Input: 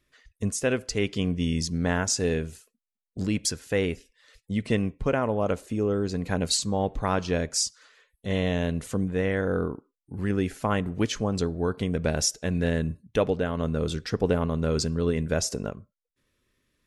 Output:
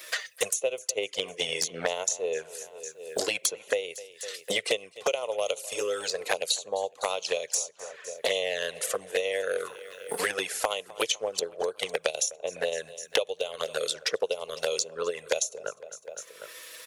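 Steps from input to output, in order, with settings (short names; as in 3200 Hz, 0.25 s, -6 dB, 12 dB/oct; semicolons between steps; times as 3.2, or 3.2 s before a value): HPF 130 Hz 24 dB/oct; tilt +3 dB/oct; transient shaper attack +9 dB, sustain -4 dB; resonant low shelf 350 Hz -13.5 dB, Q 3; in parallel at -2 dB: compressor 5:1, threshold -31 dBFS, peak gain reduction 21 dB; on the sum: envelope flanger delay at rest 6.3 ms, full sweep at -17 dBFS; on a send: feedback echo 0.252 s, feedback 53%, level -23.5 dB; on the sum: three-band squash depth 100%; gain -6.5 dB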